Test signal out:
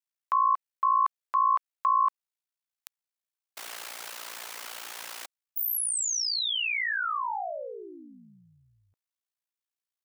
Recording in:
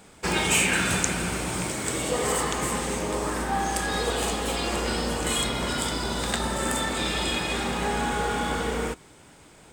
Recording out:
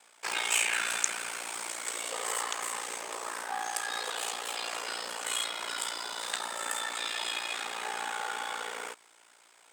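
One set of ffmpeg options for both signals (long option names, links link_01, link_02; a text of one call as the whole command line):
ffmpeg -i in.wav -af "aeval=exprs='val(0)*sin(2*PI*29*n/s)':channel_layout=same,highpass=820,volume=-2dB" out.wav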